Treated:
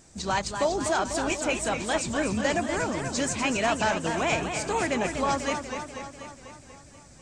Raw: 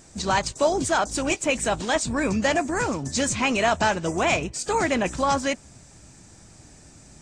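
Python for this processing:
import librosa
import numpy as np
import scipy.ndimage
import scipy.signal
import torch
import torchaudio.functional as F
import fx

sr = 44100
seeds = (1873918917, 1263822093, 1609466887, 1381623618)

y = fx.echo_warbled(x, sr, ms=244, feedback_pct=63, rate_hz=2.8, cents=128, wet_db=-7.0)
y = y * librosa.db_to_amplitude(-4.5)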